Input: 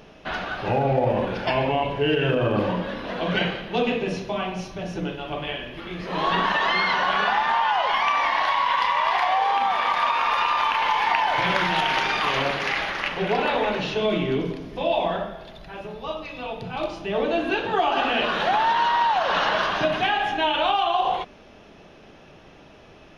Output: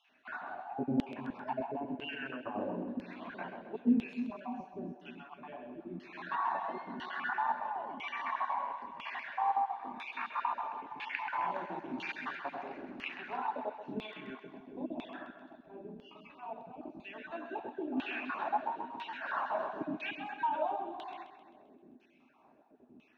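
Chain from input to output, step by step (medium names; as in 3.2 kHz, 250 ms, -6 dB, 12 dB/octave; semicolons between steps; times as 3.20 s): random holes in the spectrogram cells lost 33%; graphic EQ with 31 bands 250 Hz +12 dB, 500 Hz -11 dB, 1.25 kHz -6 dB, 2 kHz -7 dB, 3.15 kHz -11 dB, 5 kHz -8 dB; Chebyshev shaper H 2 -21 dB, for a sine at -9.5 dBFS; LFO band-pass saw down 1 Hz 230–3100 Hz; two-band feedback delay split 390 Hz, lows 302 ms, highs 131 ms, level -10 dB; trim -4.5 dB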